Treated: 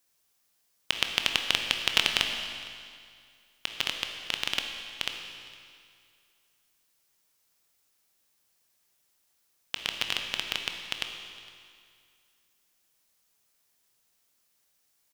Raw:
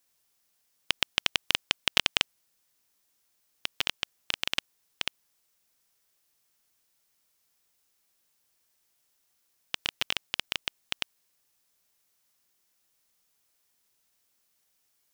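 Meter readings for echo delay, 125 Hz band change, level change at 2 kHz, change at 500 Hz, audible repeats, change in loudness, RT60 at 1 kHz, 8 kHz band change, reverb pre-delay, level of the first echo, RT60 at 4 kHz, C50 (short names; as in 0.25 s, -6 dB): 0.46 s, +1.5 dB, +1.5 dB, +1.5 dB, 1, +1.0 dB, 2.2 s, +1.5 dB, 18 ms, -23.0 dB, 2.1 s, 5.0 dB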